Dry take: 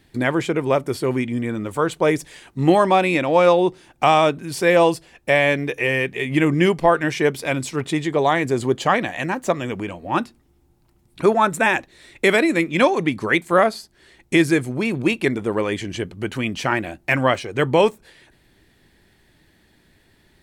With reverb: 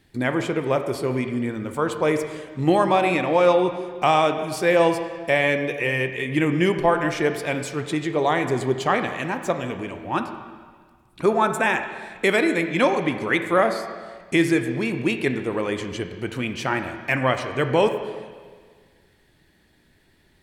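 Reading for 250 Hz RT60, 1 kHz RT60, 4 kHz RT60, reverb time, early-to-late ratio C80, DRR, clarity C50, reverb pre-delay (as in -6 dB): 1.7 s, 1.7 s, 1.6 s, 1.7 s, 9.5 dB, 7.0 dB, 8.0 dB, 12 ms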